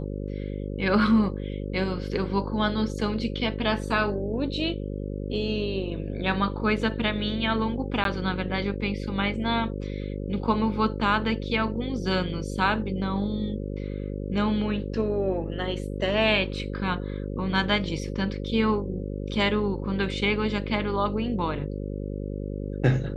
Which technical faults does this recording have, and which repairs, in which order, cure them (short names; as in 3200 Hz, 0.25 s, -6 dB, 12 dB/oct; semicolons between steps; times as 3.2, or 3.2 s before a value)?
buzz 50 Hz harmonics 11 -32 dBFS
8.04–8.05 gap 12 ms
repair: de-hum 50 Hz, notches 11; interpolate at 8.04, 12 ms